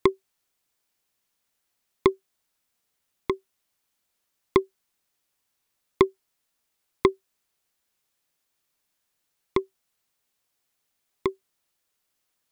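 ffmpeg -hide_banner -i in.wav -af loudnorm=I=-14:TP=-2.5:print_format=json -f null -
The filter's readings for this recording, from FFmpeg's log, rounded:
"input_i" : "-28.5",
"input_tp" : "-3.8",
"input_lra" : "9.9",
"input_thresh" : "-39.8",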